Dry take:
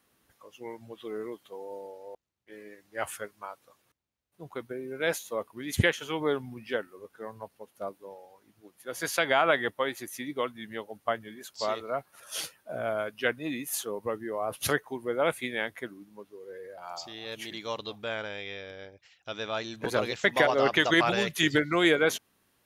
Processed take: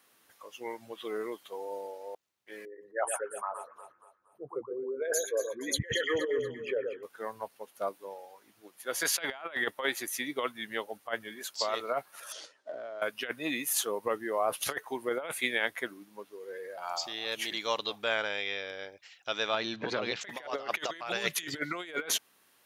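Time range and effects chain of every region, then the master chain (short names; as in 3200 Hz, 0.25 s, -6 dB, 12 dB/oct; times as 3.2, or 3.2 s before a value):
2.65–7.03 formant sharpening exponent 3 + doubler 15 ms -11.5 dB + echo with dull and thin repeats by turns 0.118 s, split 1700 Hz, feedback 62%, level -7.5 dB
12.32–13.02 G.711 law mismatch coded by A + compressor 16:1, threshold -44 dBFS + speaker cabinet 120–6800 Hz, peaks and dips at 180 Hz -9 dB, 280 Hz +8 dB, 410 Hz +6 dB, 600 Hz +8 dB, 2500 Hz -6 dB
19.54–20.21 LPF 4900 Hz 24 dB/oct + bell 160 Hz +8 dB 1.8 oct + compressor, threshold -29 dBFS
whole clip: HPF 630 Hz 6 dB/oct; negative-ratio compressor -33 dBFS, ratio -0.5; gain +2.5 dB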